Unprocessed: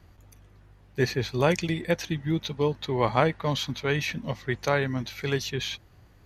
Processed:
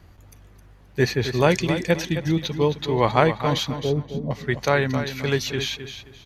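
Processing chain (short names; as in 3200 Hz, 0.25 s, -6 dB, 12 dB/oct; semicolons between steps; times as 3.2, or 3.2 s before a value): 3.75–4.31 steep low-pass 780 Hz; on a send: feedback echo 0.264 s, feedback 26%, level -10 dB; on the sum: gain +4.5 dB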